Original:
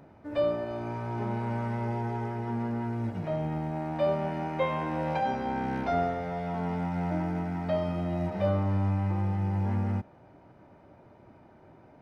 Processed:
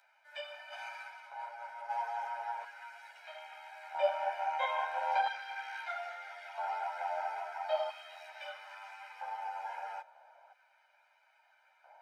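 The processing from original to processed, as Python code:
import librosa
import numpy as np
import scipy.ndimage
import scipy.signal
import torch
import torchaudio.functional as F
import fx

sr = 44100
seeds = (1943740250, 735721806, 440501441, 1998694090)

y = x + 0.98 * np.pad(x, (int(1.3 * sr / 1000.0), 0))[:len(x)]
y = fx.over_compress(y, sr, threshold_db=-32.0, ratio=-0.5, at=(0.71, 1.88), fade=0.02)
y = fx.filter_lfo_highpass(y, sr, shape='square', hz=0.38, low_hz=780.0, high_hz=1800.0, q=0.94)
y = scipy.signal.sosfilt(scipy.signal.butter(4, 540.0, 'highpass', fs=sr, output='sos'), y)
y = fx.ensemble(y, sr)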